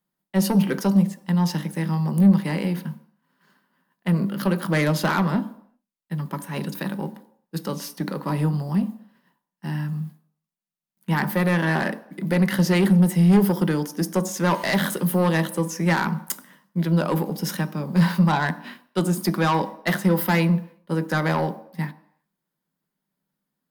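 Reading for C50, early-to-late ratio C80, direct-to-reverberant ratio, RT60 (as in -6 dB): 16.5 dB, 19.0 dB, 11.5 dB, no single decay rate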